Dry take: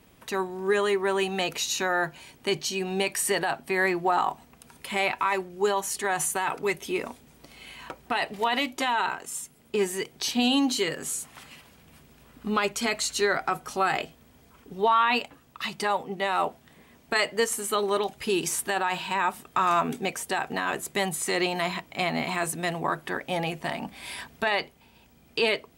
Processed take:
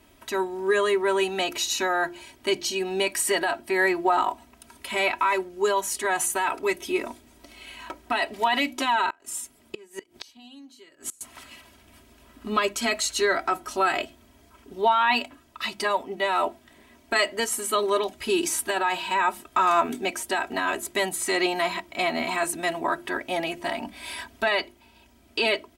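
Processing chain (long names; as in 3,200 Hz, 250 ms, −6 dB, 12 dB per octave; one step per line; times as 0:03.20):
mains-hum notches 50/100/150/200/250/300/350 Hz
comb filter 3.1 ms, depth 70%
0:09.10–0:11.21: gate with flip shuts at −19 dBFS, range −26 dB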